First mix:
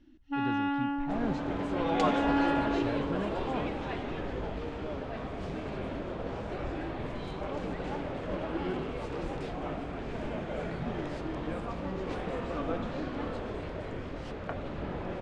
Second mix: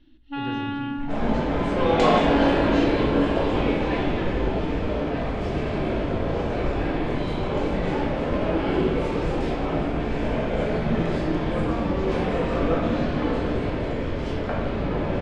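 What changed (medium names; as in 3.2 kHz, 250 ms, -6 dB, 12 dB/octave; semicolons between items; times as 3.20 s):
first sound: add resonant low-pass 3.8 kHz, resonance Q 3.5; reverb: on, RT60 1.2 s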